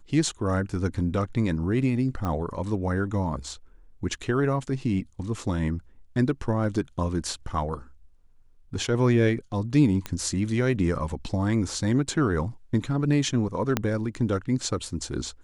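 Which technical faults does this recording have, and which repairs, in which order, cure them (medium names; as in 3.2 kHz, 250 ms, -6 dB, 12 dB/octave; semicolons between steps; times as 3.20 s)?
2.25 s: pop -18 dBFS
10.06 s: pop -15 dBFS
13.77 s: pop -8 dBFS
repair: de-click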